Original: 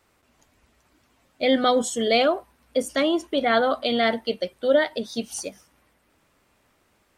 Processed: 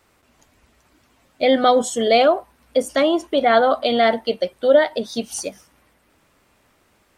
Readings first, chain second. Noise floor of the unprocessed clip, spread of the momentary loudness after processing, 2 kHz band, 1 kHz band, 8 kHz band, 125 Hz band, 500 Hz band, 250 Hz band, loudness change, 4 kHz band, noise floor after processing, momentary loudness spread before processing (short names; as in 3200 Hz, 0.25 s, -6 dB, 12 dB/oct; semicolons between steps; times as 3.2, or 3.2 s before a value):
-66 dBFS, 11 LU, +2.5 dB, +6.5 dB, +3.0 dB, n/a, +5.5 dB, +2.5 dB, +4.5 dB, +2.0 dB, -61 dBFS, 10 LU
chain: dynamic EQ 740 Hz, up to +6 dB, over -34 dBFS, Q 1; in parallel at -3 dB: compressor, threshold -28 dBFS, peak gain reduction 17 dB